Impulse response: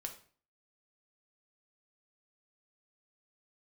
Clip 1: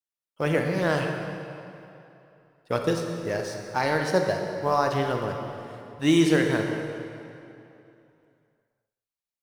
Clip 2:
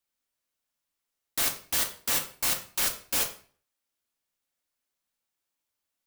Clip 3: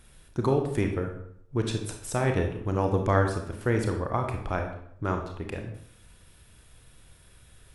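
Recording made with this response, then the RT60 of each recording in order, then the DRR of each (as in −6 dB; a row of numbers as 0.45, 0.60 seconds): 2; 2.9, 0.45, 0.65 seconds; 3.0, 3.0, 3.5 decibels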